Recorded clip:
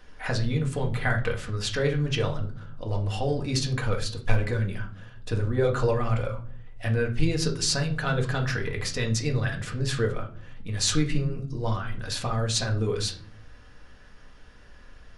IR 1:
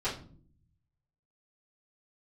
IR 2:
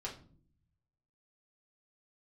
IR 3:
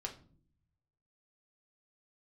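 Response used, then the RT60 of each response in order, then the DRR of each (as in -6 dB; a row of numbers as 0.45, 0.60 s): 3; not exponential, not exponential, not exponential; -13.0, -4.5, 0.5 dB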